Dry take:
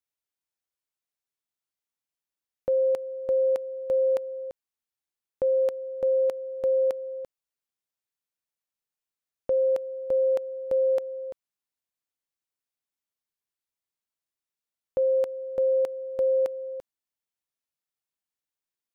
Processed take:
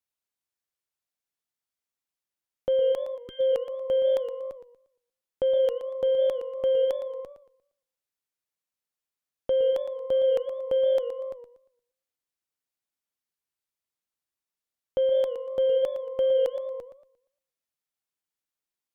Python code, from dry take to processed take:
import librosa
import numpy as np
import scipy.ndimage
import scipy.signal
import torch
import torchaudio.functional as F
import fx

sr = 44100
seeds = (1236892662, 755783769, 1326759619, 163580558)

y = fx.cheby_harmonics(x, sr, harmonics=(3, 6), levels_db=(-39, -25), full_scale_db=-19.0)
y = fx.spec_erase(y, sr, start_s=3.17, length_s=0.23, low_hz=430.0, high_hz=1200.0)
y = fx.echo_warbled(y, sr, ms=117, feedback_pct=31, rate_hz=2.8, cents=160, wet_db=-11.0)